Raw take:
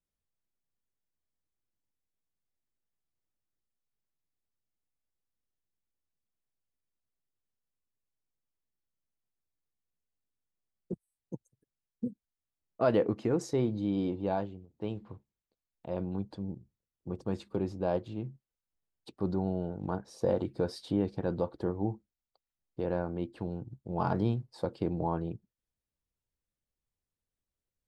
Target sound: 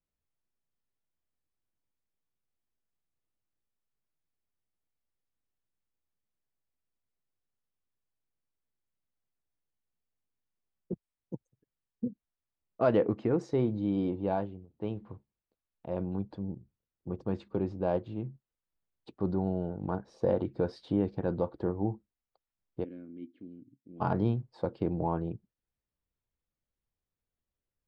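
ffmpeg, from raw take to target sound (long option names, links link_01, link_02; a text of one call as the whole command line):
ffmpeg -i in.wav -filter_complex "[0:a]asplit=3[link_01][link_02][link_03];[link_01]afade=type=out:start_time=22.83:duration=0.02[link_04];[link_02]asplit=3[link_05][link_06][link_07];[link_05]bandpass=frequency=270:width_type=q:width=8,volume=0dB[link_08];[link_06]bandpass=frequency=2290:width_type=q:width=8,volume=-6dB[link_09];[link_07]bandpass=frequency=3010:width_type=q:width=8,volume=-9dB[link_10];[link_08][link_09][link_10]amix=inputs=3:normalize=0,afade=type=in:start_time=22.83:duration=0.02,afade=type=out:start_time=24:duration=0.02[link_11];[link_03]afade=type=in:start_time=24:duration=0.02[link_12];[link_04][link_11][link_12]amix=inputs=3:normalize=0,adynamicsmooth=sensitivity=1:basefreq=3400,volume=1dB" out.wav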